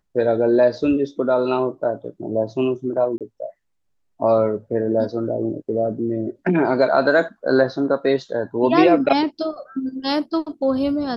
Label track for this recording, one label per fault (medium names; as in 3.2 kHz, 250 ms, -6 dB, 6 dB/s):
3.180000	3.210000	dropout 27 ms